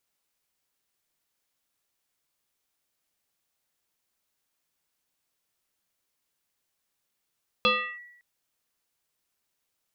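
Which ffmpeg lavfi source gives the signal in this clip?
-f lavfi -i "aevalsrc='0.15*pow(10,-3*t/0.81)*sin(2*PI*1940*t+2.5*clip(1-t/0.34,0,1)*sin(2*PI*0.37*1940*t))':d=0.56:s=44100"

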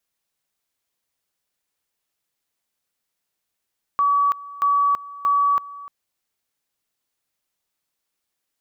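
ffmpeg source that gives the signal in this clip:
-f lavfi -i "aevalsrc='pow(10,(-15-19*gte(mod(t,0.63),0.33))/20)*sin(2*PI*1140*t)':d=1.89:s=44100"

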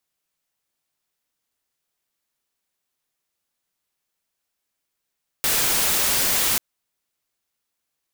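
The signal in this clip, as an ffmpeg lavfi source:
-f lavfi -i "anoisesrc=c=white:a=0.163:d=1.14:r=44100:seed=1"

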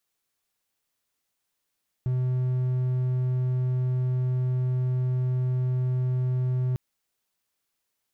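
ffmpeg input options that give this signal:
-f lavfi -i "aevalsrc='0.0944*(1-4*abs(mod(127*t+0.25,1)-0.5))':d=4.7:s=44100"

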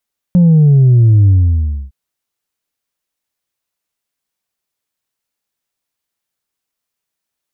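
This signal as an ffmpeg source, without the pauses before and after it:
-f lavfi -i "aevalsrc='0.562*clip((1.56-t)/0.63,0,1)*tanh(1.19*sin(2*PI*180*1.56/log(65/180)*(exp(log(65/180)*t/1.56)-1)))/tanh(1.19)':d=1.56:s=44100"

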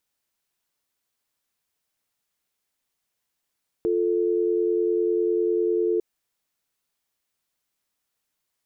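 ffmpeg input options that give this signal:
-f lavfi -i "aevalsrc='0.075*(sin(2*PI*350*t)+sin(2*PI*440*t))':d=2.15:s=44100"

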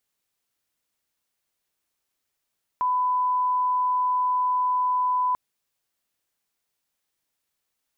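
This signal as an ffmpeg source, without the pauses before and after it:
-f lavfi -i "sine=f=1000:d=2.54:r=44100,volume=-1.94dB"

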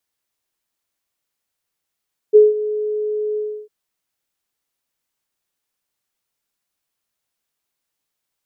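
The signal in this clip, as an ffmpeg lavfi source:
-f lavfi -i "aevalsrc='0.668*sin(2*PI*424*t)':d=1.352:s=44100,afade=t=in:d=0.027,afade=t=out:st=0.027:d=0.177:silence=0.168,afade=t=out:st=1.04:d=0.312"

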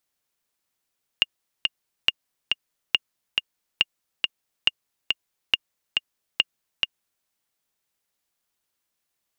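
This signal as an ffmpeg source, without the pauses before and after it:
-f lavfi -i "aevalsrc='pow(10,(-4-3.5*gte(mod(t,2*60/139),60/139))/20)*sin(2*PI*2830*mod(t,60/139))*exp(-6.91*mod(t,60/139)/0.03)':d=6.04:s=44100"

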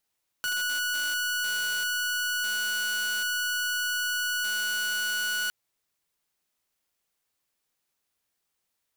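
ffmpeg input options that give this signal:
-f lavfi -i "aevalsrc='0.0631*(2*mod(1470*t,1)-1)':d=5.06:s=44100"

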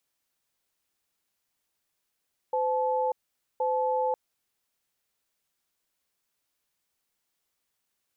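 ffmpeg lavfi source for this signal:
-f lavfi -i "aevalsrc='0.0473*(sin(2*PI*511*t)+sin(2*PI*866*t))*clip(min(mod(t,1.07),0.59-mod(t,1.07))/0.005,0,1)':d=1.61:s=44100"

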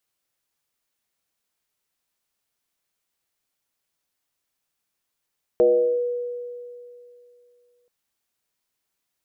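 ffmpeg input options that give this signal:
-f lavfi -i "aevalsrc='0.251*pow(10,-3*t/2.66)*sin(2*PI*486*t+0.74*clip(1-t/0.42,0,1)*sin(2*PI*0.27*486*t))':d=2.28:s=44100"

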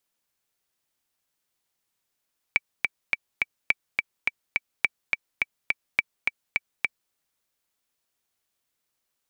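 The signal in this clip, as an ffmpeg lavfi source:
-f lavfi -i "aevalsrc='pow(10,(-6-3*gte(mod(t,4*60/210),60/210))/20)*sin(2*PI*2310*mod(t,60/210))*exp(-6.91*mod(t,60/210)/0.03)':d=4.57:s=44100"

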